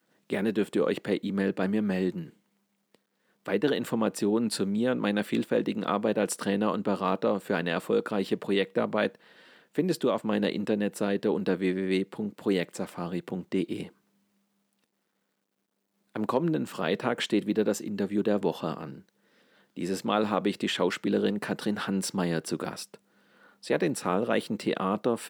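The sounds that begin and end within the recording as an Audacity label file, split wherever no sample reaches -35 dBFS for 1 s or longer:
3.460000	13.860000	sound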